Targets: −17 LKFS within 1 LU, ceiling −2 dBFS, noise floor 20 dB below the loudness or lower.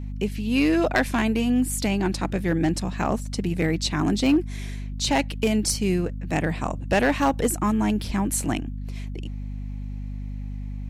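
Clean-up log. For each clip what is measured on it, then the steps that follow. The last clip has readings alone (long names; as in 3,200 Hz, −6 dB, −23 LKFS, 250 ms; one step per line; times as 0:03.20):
share of clipped samples 0.4%; peaks flattened at −13.5 dBFS; mains hum 50 Hz; hum harmonics up to 250 Hz; level of the hum −29 dBFS; integrated loudness −24.0 LKFS; sample peak −13.5 dBFS; target loudness −17.0 LKFS
→ clipped peaks rebuilt −13.5 dBFS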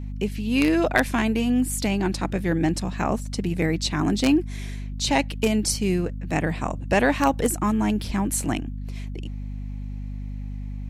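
share of clipped samples 0.0%; mains hum 50 Hz; hum harmonics up to 250 Hz; level of the hum −29 dBFS
→ mains-hum notches 50/100/150/200/250 Hz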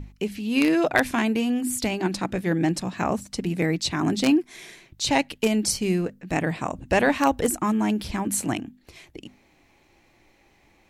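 mains hum none found; integrated loudness −24.5 LKFS; sample peak −4.5 dBFS; target loudness −17.0 LKFS
→ level +7.5 dB
brickwall limiter −2 dBFS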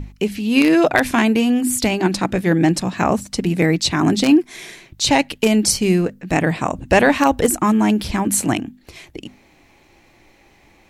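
integrated loudness −17.0 LKFS; sample peak −2.0 dBFS; background noise floor −53 dBFS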